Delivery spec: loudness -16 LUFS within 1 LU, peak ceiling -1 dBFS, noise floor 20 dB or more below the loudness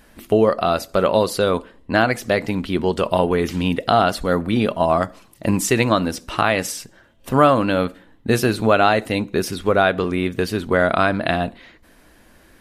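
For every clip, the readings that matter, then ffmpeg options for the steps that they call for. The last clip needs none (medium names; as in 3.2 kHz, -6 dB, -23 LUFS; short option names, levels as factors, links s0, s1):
loudness -19.5 LUFS; peak level -2.0 dBFS; loudness target -16.0 LUFS
-> -af "volume=1.5,alimiter=limit=0.891:level=0:latency=1"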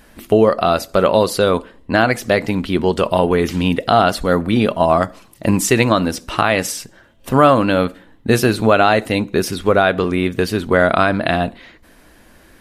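loudness -16.5 LUFS; peak level -1.0 dBFS; noise floor -48 dBFS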